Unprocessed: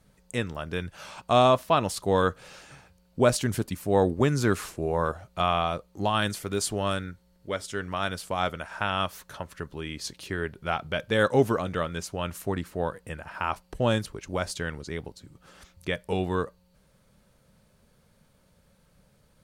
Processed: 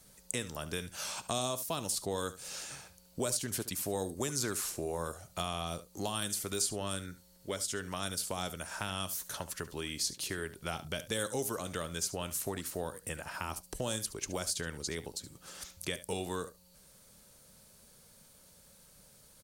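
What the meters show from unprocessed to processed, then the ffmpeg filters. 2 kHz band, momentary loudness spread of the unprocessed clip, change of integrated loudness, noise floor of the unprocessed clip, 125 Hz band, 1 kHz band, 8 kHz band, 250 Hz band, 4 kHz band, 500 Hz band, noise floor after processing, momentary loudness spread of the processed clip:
−9.5 dB, 14 LU, −8.5 dB, −64 dBFS, −11.5 dB, −13.0 dB, +4.0 dB, −10.5 dB, −3.5 dB, −12.0 dB, −61 dBFS, 7 LU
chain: -filter_complex "[0:a]bass=frequency=250:gain=-4,treble=frequency=4000:gain=14,acrossover=split=370|5200[link_01][link_02][link_03];[link_01]acompressor=threshold=-40dB:ratio=4[link_04];[link_02]acompressor=threshold=-39dB:ratio=4[link_05];[link_03]acompressor=threshold=-36dB:ratio=4[link_06];[link_04][link_05][link_06]amix=inputs=3:normalize=0,asplit=2[link_07][link_08];[link_08]aecho=0:1:72:0.178[link_09];[link_07][link_09]amix=inputs=2:normalize=0"

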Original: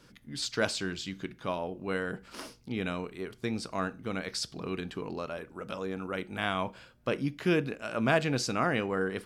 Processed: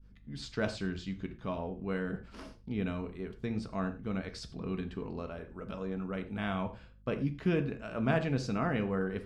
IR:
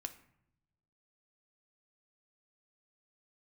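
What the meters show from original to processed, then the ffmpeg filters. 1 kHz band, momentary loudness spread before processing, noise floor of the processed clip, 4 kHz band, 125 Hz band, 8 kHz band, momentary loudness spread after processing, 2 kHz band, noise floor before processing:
−5.5 dB, 10 LU, −55 dBFS, −10.0 dB, +1.5 dB, −14.0 dB, 11 LU, −6.5 dB, −59 dBFS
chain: -filter_complex "[0:a]agate=range=-33dB:threshold=-51dB:ratio=3:detection=peak,aeval=exprs='val(0)+0.000891*(sin(2*PI*50*n/s)+sin(2*PI*2*50*n/s)/2+sin(2*PI*3*50*n/s)/3+sin(2*PI*4*50*n/s)/4+sin(2*PI*5*50*n/s)/5)':channel_layout=same,aemphasis=mode=reproduction:type=bsi[link_01];[1:a]atrim=start_sample=2205,atrim=end_sample=3528,asetrate=30429,aresample=44100[link_02];[link_01][link_02]afir=irnorm=-1:irlink=0,volume=-4.5dB"

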